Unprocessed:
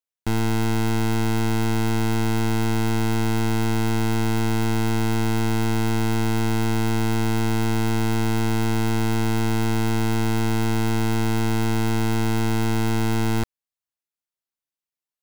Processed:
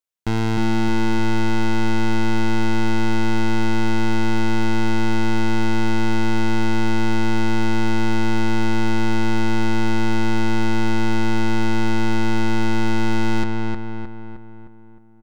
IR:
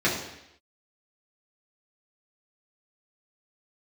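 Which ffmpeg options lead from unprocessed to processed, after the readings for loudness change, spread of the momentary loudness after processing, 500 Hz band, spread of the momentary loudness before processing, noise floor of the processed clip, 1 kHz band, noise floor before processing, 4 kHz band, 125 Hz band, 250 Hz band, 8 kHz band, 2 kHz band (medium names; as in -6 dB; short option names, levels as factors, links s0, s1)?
+1.0 dB, 1 LU, +1.0 dB, 0 LU, -41 dBFS, +3.0 dB, under -85 dBFS, +1.5 dB, -2.5 dB, +2.5 dB, -4.5 dB, +4.5 dB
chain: -filter_complex "[0:a]acrossover=split=6600[s0][s1];[s1]acompressor=threshold=0.00282:ratio=4:attack=1:release=60[s2];[s0][s2]amix=inputs=2:normalize=0,asplit=2[s3][s4];[s4]adelay=309,lowpass=f=2700:p=1,volume=0.708,asplit=2[s5][s6];[s6]adelay=309,lowpass=f=2700:p=1,volume=0.53,asplit=2[s7][s8];[s8]adelay=309,lowpass=f=2700:p=1,volume=0.53,asplit=2[s9][s10];[s10]adelay=309,lowpass=f=2700:p=1,volume=0.53,asplit=2[s11][s12];[s12]adelay=309,lowpass=f=2700:p=1,volume=0.53,asplit=2[s13][s14];[s14]adelay=309,lowpass=f=2700:p=1,volume=0.53,asplit=2[s15][s16];[s16]adelay=309,lowpass=f=2700:p=1,volume=0.53[s17];[s3][s5][s7][s9][s11][s13][s15][s17]amix=inputs=8:normalize=0,volume=1.19"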